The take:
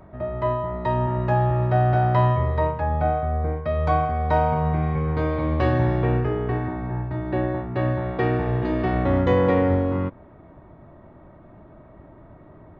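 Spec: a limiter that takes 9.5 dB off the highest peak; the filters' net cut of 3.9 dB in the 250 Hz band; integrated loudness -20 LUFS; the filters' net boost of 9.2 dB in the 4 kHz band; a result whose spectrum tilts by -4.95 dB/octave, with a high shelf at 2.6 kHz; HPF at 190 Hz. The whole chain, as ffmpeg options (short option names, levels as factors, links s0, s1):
-af "highpass=190,equalizer=f=250:t=o:g=-3.5,highshelf=f=2600:g=4,equalizer=f=4000:t=o:g=9,volume=2.24,alimiter=limit=0.316:level=0:latency=1"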